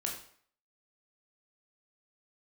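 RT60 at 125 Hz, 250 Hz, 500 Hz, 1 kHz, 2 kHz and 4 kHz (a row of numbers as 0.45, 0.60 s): 0.45, 0.55, 0.55, 0.55, 0.55, 0.50 s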